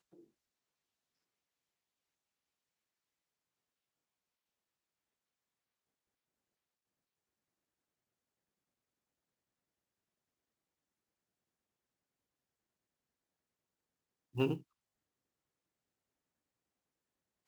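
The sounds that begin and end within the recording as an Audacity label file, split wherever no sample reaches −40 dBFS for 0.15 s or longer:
14.360000	14.570000	sound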